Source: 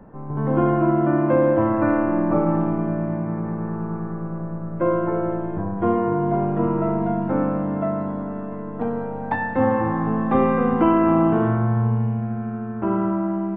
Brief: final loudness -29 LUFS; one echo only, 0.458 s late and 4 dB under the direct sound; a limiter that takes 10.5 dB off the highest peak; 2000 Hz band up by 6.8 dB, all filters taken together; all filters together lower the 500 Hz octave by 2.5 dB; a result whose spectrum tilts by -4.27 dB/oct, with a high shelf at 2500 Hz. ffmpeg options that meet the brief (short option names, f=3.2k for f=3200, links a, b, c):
-af "equalizer=f=500:t=o:g=-4,equalizer=f=2k:t=o:g=7,highshelf=f=2.5k:g=5,alimiter=limit=-15.5dB:level=0:latency=1,aecho=1:1:458:0.631,volume=-5dB"